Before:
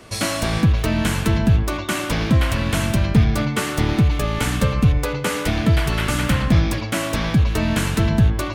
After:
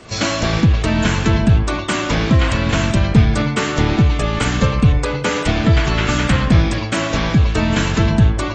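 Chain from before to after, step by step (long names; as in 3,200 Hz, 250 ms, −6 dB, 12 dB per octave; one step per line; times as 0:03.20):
level +3 dB
AAC 24 kbit/s 24,000 Hz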